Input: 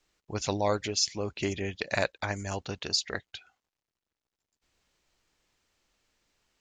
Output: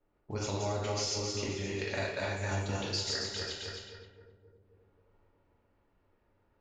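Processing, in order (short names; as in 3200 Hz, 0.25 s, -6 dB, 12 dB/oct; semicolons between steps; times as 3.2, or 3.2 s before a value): regenerating reverse delay 0.132 s, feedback 56%, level -1 dB; bell 380 Hz +7 dB 0.21 oct; compressor 3:1, threshold -39 dBFS, peak gain reduction 14.5 dB; on a send: darkening echo 0.266 s, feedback 69%, low-pass 900 Hz, level -12 dB; on the sum: two-slope reverb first 0.57 s, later 1.5 s, DRR -2.5 dB; low-pass opened by the level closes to 840 Hz, open at -38.5 dBFS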